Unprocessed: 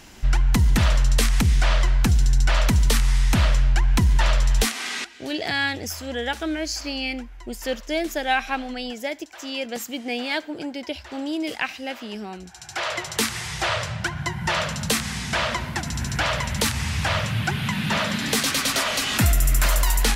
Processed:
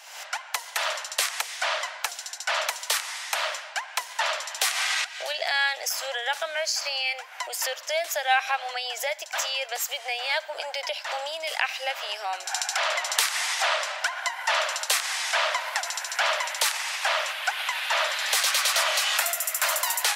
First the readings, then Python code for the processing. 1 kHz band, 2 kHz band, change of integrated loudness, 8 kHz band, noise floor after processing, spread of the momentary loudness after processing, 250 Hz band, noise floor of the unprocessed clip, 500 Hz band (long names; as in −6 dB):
+0.5 dB, +1.0 dB, −2.5 dB, +1.0 dB, −43 dBFS, 7 LU, below −40 dB, −41 dBFS, −2.5 dB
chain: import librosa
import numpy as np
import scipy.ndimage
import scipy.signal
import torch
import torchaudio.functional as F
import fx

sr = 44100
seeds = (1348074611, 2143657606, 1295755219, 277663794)

y = fx.recorder_agc(x, sr, target_db=-16.5, rise_db_per_s=57.0, max_gain_db=30)
y = scipy.signal.sosfilt(scipy.signal.butter(8, 580.0, 'highpass', fs=sr, output='sos'), y)